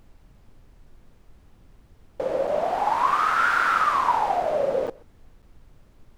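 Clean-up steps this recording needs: interpolate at 2.47/4.87/5.42 s, 6.2 ms; noise print and reduce 16 dB; inverse comb 127 ms -23.5 dB

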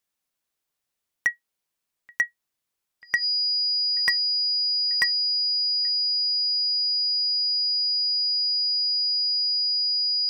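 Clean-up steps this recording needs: clip repair -14.5 dBFS; band-stop 4.9 kHz, Q 30

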